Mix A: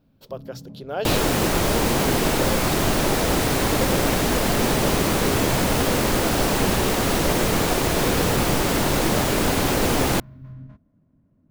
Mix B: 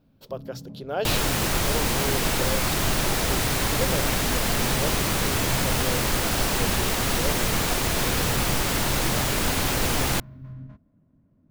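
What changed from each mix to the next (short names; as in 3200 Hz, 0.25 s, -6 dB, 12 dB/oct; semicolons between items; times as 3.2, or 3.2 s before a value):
second sound: add bell 360 Hz -8 dB 2.8 oct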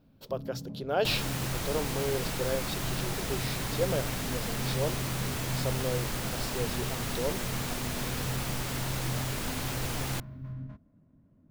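second sound -10.5 dB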